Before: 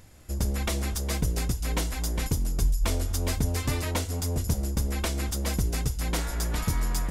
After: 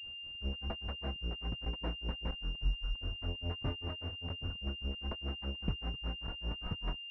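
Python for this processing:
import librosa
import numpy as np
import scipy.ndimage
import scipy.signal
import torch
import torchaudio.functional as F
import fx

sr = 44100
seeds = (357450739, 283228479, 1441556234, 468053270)

y = fx.granulator(x, sr, seeds[0], grain_ms=171.0, per_s=5.0, spray_ms=100.0, spread_st=0)
y = fx.buffer_crackle(y, sr, first_s=0.33, period_s=0.66, block=512, kind='zero')
y = fx.pwm(y, sr, carrier_hz=2800.0)
y = y * librosa.db_to_amplitude(-6.5)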